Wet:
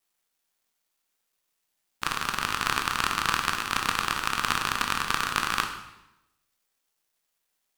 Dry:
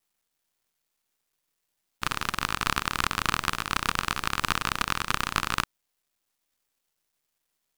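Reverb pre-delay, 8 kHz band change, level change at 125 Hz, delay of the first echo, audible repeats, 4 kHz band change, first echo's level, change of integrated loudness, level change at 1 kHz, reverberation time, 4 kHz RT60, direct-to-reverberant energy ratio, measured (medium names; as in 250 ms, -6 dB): 14 ms, +1.5 dB, -4.0 dB, no echo, no echo, +1.0 dB, no echo, +1.0 dB, +1.5 dB, 0.95 s, 0.80 s, 4.0 dB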